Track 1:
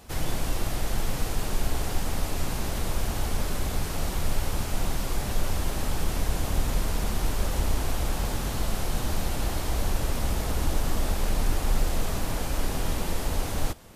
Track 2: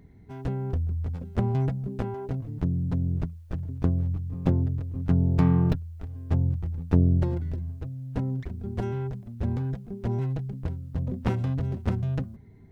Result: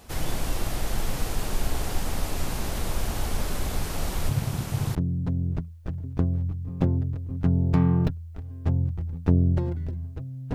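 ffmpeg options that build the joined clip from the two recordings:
-filter_complex "[0:a]asettb=1/sr,asplit=3[a][b][c];[a]atrim=end=4.294[d];[b]atrim=start=4.29:end=4.95,asetpts=PTS-STARTPTS,afade=t=in:d=0.004:c=qsin,afade=t=out:st=0.656:d=0.004:c=qsin,aeval=exprs='val(0)*sin(2*PI*120*n/s)':c=same[e];[c]atrim=start=4.946[f];[d][e]acrossfade=d=0.004:c1=hsin:c2=qsin[g];[g][f]acrossfade=d=0.004:c1=qsin:c2=hsin,apad=whole_dur=10.54,atrim=end=10.54,atrim=end=4.952[h];[1:a]atrim=start=2.598:end=8.19[i];[h][i]acrossfade=d=0.004:c1=hsin:c2=hsin"

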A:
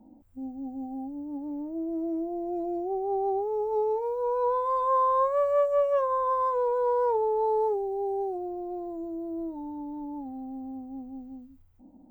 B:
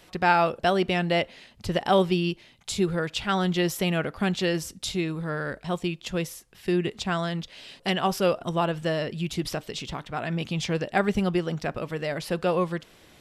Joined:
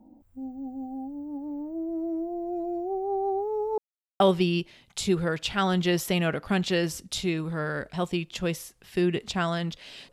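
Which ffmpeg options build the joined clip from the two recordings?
-filter_complex "[0:a]apad=whole_dur=10.12,atrim=end=10.12,asplit=2[a][b];[a]atrim=end=3.78,asetpts=PTS-STARTPTS,afade=t=out:st=3.776:d=0.004:c=hsin[c];[b]atrim=start=3.78:end=4.2,asetpts=PTS-STARTPTS,volume=0[d];[1:a]atrim=start=1.91:end=7.83,asetpts=PTS-STARTPTS,afade=t=in:d=0.004:c=hsin[e];[c][d][e]concat=n=3:v=0:a=1"

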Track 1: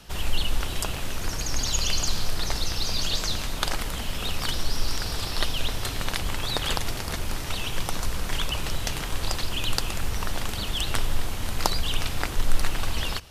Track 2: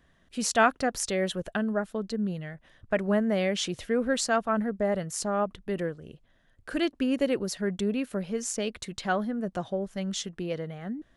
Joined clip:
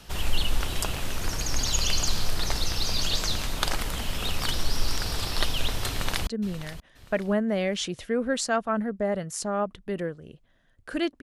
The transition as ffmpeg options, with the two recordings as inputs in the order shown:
-filter_complex "[0:a]apad=whole_dur=11.22,atrim=end=11.22,atrim=end=6.272[a];[1:a]atrim=start=2.068:end=7.02[b];[a][b]acrossfade=d=0.004:c1=hsin:c2=hsin,asplit=2[c][d];[d]afade=t=in:st=5.89:d=0.01,afade=t=out:st=6.27:d=0.01,aecho=0:1:530|1060|1590:0.211349|0.0739721|0.0258902[e];[c][e]amix=inputs=2:normalize=0"

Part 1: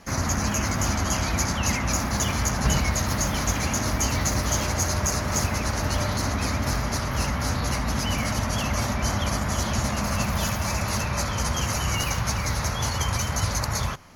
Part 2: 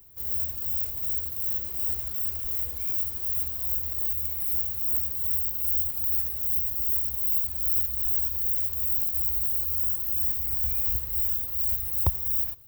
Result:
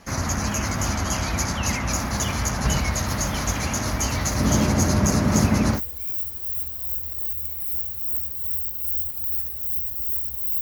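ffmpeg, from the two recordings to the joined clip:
-filter_complex "[0:a]asettb=1/sr,asplit=3[a][b][c];[a]atrim=end=4.404[d];[b]atrim=start=4.4:end=5.81,asetpts=PTS-STARTPTS,afade=t=in:d=0.004:c=qsin,afade=t=out:st=1.406:d=0.004:c=qsin,equalizer=f=220:t=o:w=2:g=13[e];[c]atrim=start=5.806[f];[d][e]acrossfade=d=0.004:c1=hsin:c2=qsin[g];[g][f]acrossfade=d=0.004:c1=qsin:c2=hsin,apad=whole_dur=10.61,atrim=end=10.61,atrim=end=5.81,asetpts=PTS-STARTPTS[h];[1:a]atrim=start=2.53:end=7.41,asetpts=PTS-STARTPTS[i];[h][i]acrossfade=d=0.08:c1=tri:c2=tri"

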